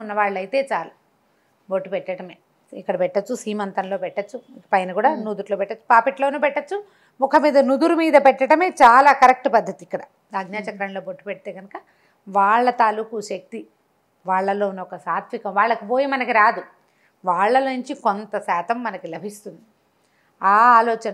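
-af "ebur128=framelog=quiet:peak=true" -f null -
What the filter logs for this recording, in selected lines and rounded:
Integrated loudness:
  I:         -18.9 LUFS
  Threshold: -30.2 LUFS
Loudness range:
  LRA:        10.7 LU
  Threshold: -40.2 LUFS
  LRA low:   -26.0 LUFS
  LRA high:  -15.4 LUFS
True peak:
  Peak:       -1.1 dBFS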